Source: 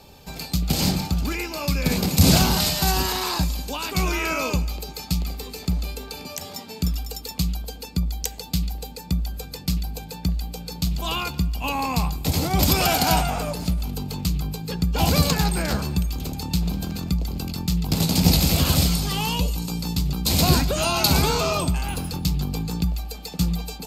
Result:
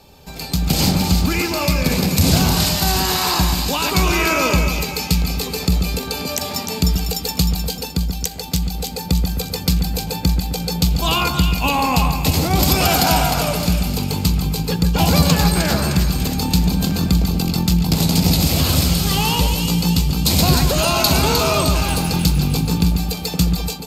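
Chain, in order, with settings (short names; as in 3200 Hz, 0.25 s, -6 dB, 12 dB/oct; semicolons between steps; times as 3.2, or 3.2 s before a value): compressor 1.5:1, threshold -30 dBFS, peak gain reduction 7.5 dB; split-band echo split 1900 Hz, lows 0.131 s, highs 0.307 s, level -6 dB; AGC gain up to 11.5 dB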